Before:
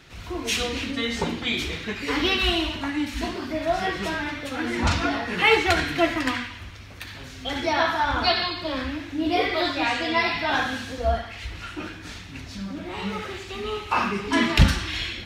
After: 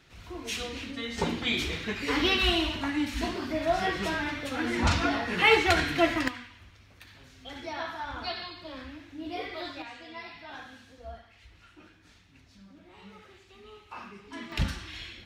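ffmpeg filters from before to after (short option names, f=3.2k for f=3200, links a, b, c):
-af "asetnsamples=n=441:p=0,asendcmd='1.18 volume volume -2.5dB;6.28 volume volume -13.5dB;9.82 volume volume -20dB;14.52 volume volume -12.5dB',volume=-9dB"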